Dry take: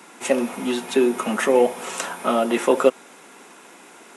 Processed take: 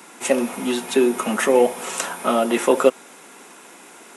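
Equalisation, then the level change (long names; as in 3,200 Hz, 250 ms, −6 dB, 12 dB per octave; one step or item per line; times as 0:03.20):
high-shelf EQ 8,300 Hz +6.5 dB
+1.0 dB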